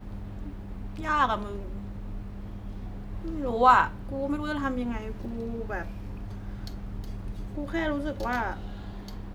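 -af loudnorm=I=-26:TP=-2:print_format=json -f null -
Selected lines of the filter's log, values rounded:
"input_i" : "-30.9",
"input_tp" : "-5.5",
"input_lra" : "7.0",
"input_thresh" : "-41.1",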